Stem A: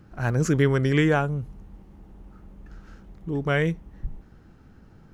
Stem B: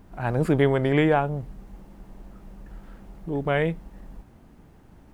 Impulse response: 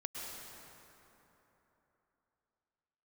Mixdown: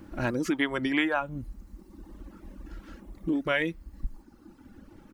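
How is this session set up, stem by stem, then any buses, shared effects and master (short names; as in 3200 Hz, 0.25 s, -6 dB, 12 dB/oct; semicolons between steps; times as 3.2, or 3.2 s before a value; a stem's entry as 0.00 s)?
0.0 dB, 0.00 s, no send, bell 320 Hz +8 dB 1.1 oct; comb 3.5 ms, depth 61%; compressor, threshold -25 dBFS, peak gain reduction 15 dB
+2.0 dB, 0.00 s, no send, HPF 1000 Hz 24 dB/oct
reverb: off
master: reverb removal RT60 1.4 s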